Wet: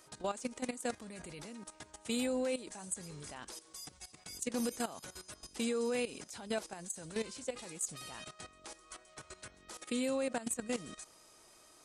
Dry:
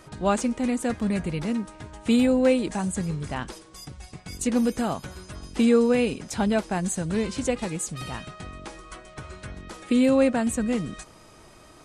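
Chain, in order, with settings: tone controls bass -11 dB, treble +10 dB; limiter -19 dBFS, peak gain reduction 10.5 dB; level quantiser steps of 14 dB; gain -5.5 dB

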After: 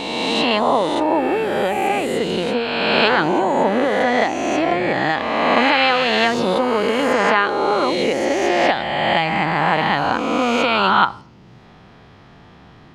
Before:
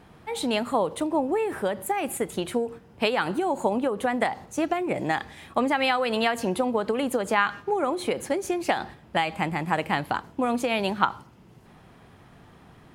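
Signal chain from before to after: spectral swells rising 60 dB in 2.13 s; resonant high shelf 7300 Hz -14 dB, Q 1.5; gain +3 dB

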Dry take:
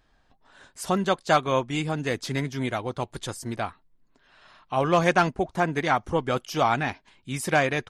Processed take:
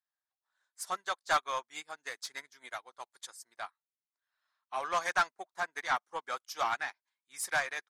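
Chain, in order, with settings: HPF 1200 Hz 12 dB/oct; bell 2800 Hz -10 dB 0.54 oct; in parallel at +1 dB: limiter -23 dBFS, peak gain reduction 10 dB; on the sum: soft clip -19 dBFS, distortion -14 dB; upward expander 2.5:1, over -44 dBFS

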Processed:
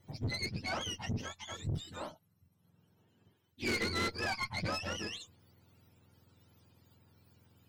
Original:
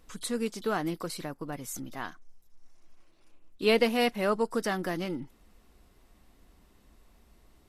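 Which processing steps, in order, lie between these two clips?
spectrum mirrored in octaves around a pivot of 990 Hz; tube stage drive 30 dB, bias 0.5

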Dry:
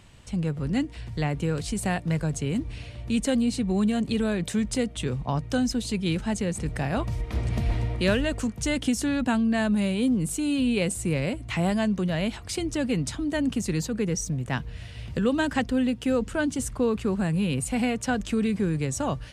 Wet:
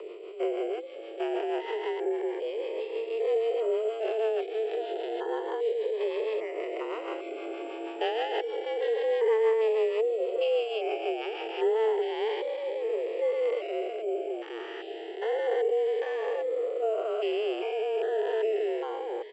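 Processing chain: stepped spectrum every 0.4 s; reverb removal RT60 0.68 s; in parallel at -1.5 dB: limiter -27 dBFS, peak gain reduction 9.5 dB; on the sum: rotary speaker horn 6.3 Hz, later 0.8 Hz, at 11.3; on a send: echo 1.062 s -17 dB; on the sum: careless resampling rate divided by 6×, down filtered, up zero stuff; mistuned SSB +220 Hz 160–3000 Hz; cascading phaser rising 0.3 Hz; gain +2.5 dB

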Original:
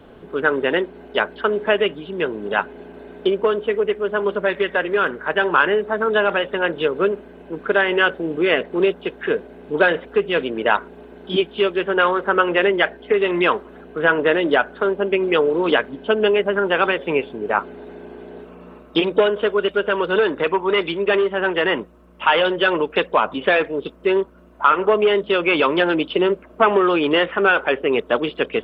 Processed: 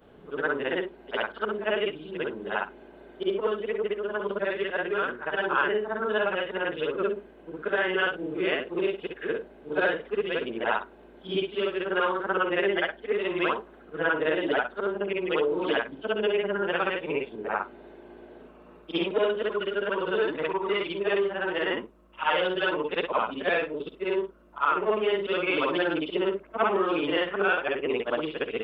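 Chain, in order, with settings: short-time reversal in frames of 0.141 s; gain -5.5 dB

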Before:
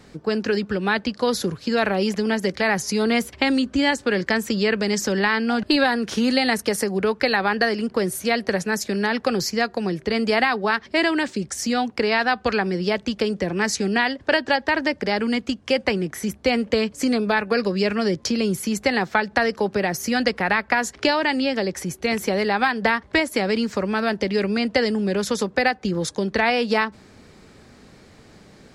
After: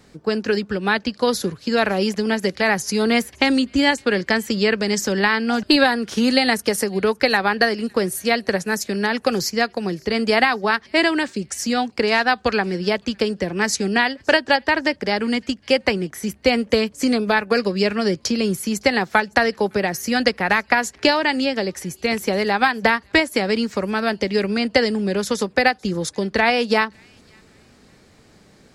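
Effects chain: high shelf 6800 Hz +5.5 dB; on a send: thin delay 0.56 s, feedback 32%, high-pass 1900 Hz, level -23.5 dB; on the sum: upward expander 1.5:1, over -30 dBFS; gain +4 dB

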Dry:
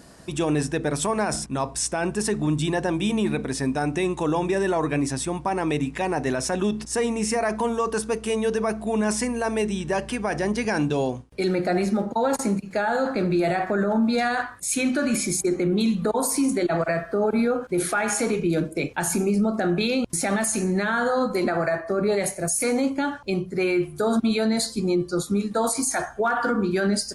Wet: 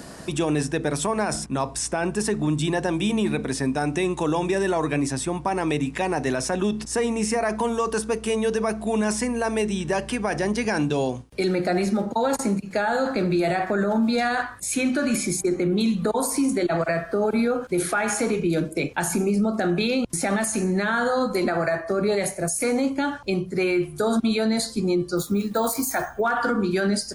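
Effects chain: 25.17–26.21 careless resampling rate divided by 2×, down none, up hold; three-band squash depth 40%

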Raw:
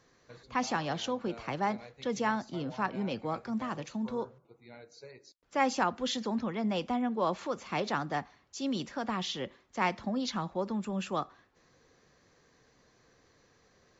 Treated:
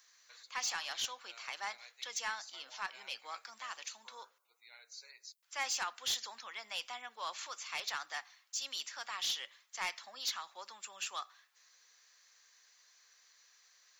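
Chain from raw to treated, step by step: HPF 1100 Hz 12 dB/oct; tilt +4.5 dB/oct; soft clip -25 dBFS, distortion -12 dB; gain -4 dB

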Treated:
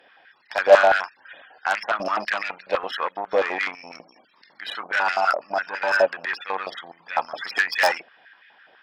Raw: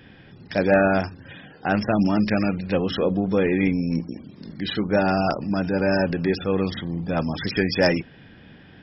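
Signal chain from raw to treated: added harmonics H 5 -10 dB, 7 -12 dB, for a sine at -6.5 dBFS; stepped high-pass 12 Hz 630–1900 Hz; gain -3.5 dB

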